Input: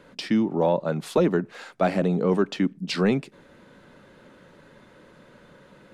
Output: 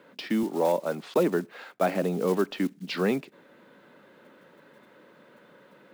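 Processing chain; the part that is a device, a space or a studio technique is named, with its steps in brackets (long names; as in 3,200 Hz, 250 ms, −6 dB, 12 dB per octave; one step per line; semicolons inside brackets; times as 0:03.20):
early digital voice recorder (band-pass filter 220–3,900 Hz; one scale factor per block 5 bits)
0:00.43–0:01.16: high-pass filter 180 Hz
level −2 dB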